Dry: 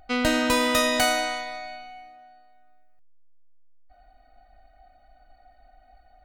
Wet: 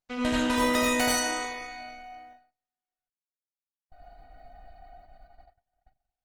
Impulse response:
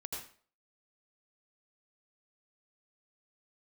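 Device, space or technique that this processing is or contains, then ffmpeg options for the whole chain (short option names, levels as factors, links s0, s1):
speakerphone in a meeting room: -filter_complex "[1:a]atrim=start_sample=2205[s0];[0:a][s0]afir=irnorm=-1:irlink=0,dynaudnorm=f=240:g=11:m=2.82,agate=range=0.02:threshold=0.00447:ratio=16:detection=peak,volume=0.668" -ar 48000 -c:a libopus -b:a 16k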